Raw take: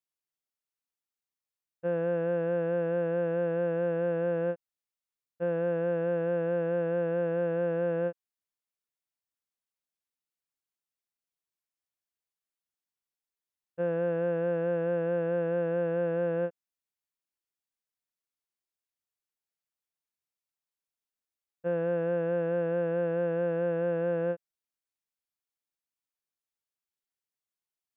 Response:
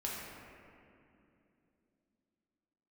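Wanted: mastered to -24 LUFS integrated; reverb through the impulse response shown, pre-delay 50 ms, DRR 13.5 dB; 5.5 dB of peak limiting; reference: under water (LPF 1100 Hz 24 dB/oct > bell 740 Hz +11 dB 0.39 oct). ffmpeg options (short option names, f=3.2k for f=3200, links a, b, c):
-filter_complex "[0:a]alimiter=level_in=3dB:limit=-24dB:level=0:latency=1,volume=-3dB,asplit=2[a][b];[1:a]atrim=start_sample=2205,adelay=50[c];[b][c]afir=irnorm=-1:irlink=0,volume=-16.5dB[d];[a][d]amix=inputs=2:normalize=0,lowpass=f=1.1k:w=0.5412,lowpass=f=1.1k:w=1.3066,equalizer=f=740:t=o:w=0.39:g=11,volume=8.5dB"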